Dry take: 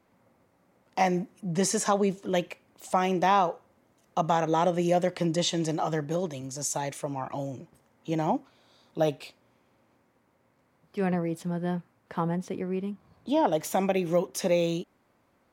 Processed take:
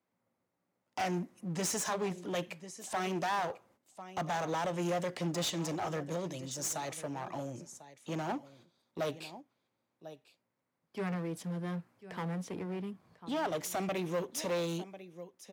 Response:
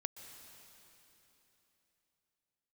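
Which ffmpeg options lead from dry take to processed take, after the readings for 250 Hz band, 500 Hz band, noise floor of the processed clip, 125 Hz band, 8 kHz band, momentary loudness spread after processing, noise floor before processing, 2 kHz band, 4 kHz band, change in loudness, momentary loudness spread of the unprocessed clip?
−8.5 dB, −9.0 dB, −84 dBFS, −7.5 dB, −4.5 dB, 15 LU, −68 dBFS, −4.0 dB, −5.0 dB, −8.0 dB, 13 LU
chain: -filter_complex "[0:a]aemphasis=mode=reproduction:type=50kf,agate=range=-13dB:threshold=-58dB:ratio=16:detection=peak,acrossover=split=570[link_01][link_02];[link_01]asplit=2[link_03][link_04];[link_04]adelay=17,volume=-11.5dB[link_05];[link_03][link_05]amix=inputs=2:normalize=0[link_06];[link_02]crystalizer=i=3:c=0[link_07];[link_06][link_07]amix=inputs=2:normalize=0,aecho=1:1:1046:0.119,aeval=exprs='clip(val(0),-1,0.0266)':channel_layout=same,aeval=exprs='0.299*(cos(1*acos(clip(val(0)/0.299,-1,1)))-cos(1*PI/2))+0.0944*(cos(2*acos(clip(val(0)/0.299,-1,1)))-cos(2*PI/2))':channel_layout=same,highpass=98,volume=-4.5dB"

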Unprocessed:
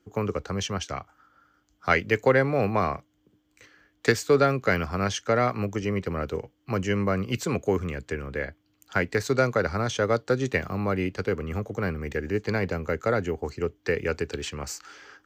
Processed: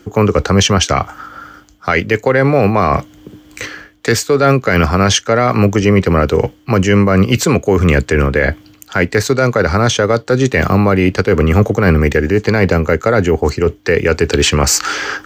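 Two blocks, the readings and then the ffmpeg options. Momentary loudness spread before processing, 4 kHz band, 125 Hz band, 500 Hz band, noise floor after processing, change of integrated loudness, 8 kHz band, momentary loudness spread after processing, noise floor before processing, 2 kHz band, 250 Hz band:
11 LU, +17.5 dB, +16.0 dB, +12.5 dB, −45 dBFS, +13.5 dB, +19.0 dB, 7 LU, −69 dBFS, +12.0 dB, +15.0 dB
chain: -af "areverse,acompressor=threshold=-36dB:ratio=5,areverse,alimiter=level_in=29dB:limit=-1dB:release=50:level=0:latency=1,volume=-1dB"

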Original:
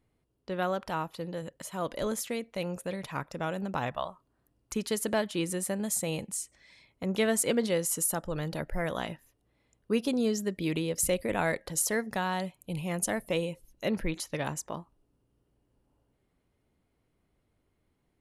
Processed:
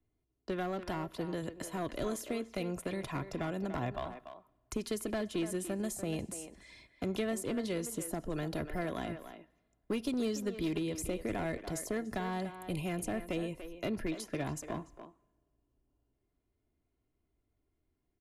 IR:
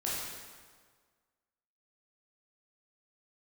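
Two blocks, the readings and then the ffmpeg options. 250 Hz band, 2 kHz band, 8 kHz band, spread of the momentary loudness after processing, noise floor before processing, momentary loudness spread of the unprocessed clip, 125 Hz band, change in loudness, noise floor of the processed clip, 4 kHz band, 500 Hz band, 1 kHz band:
−3.0 dB, −7.5 dB, −11.5 dB, 8 LU, −75 dBFS, 10 LU, −3.5 dB, −5.5 dB, −81 dBFS, −7.0 dB, −5.5 dB, −6.0 dB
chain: -filter_complex "[0:a]agate=range=-13dB:threshold=-59dB:ratio=16:detection=peak,lowshelf=frequency=450:gain=7,aecho=1:1:2.9:0.46,acrossover=split=110|340|990[link_01][link_02][link_03][link_04];[link_01]acompressor=threshold=-45dB:ratio=4[link_05];[link_02]acompressor=threshold=-39dB:ratio=4[link_06];[link_03]acompressor=threshold=-40dB:ratio=4[link_07];[link_04]acompressor=threshold=-44dB:ratio=4[link_08];[link_05][link_06][link_07][link_08]amix=inputs=4:normalize=0,aeval=exprs='clip(val(0),-1,0.0266)':channel_layout=same,asplit=2[link_09][link_10];[link_10]adelay=290,highpass=300,lowpass=3400,asoftclip=type=hard:threshold=-31.5dB,volume=-9dB[link_11];[link_09][link_11]amix=inputs=2:normalize=0,asplit=2[link_12][link_13];[1:a]atrim=start_sample=2205[link_14];[link_13][link_14]afir=irnorm=-1:irlink=0,volume=-28.5dB[link_15];[link_12][link_15]amix=inputs=2:normalize=0"

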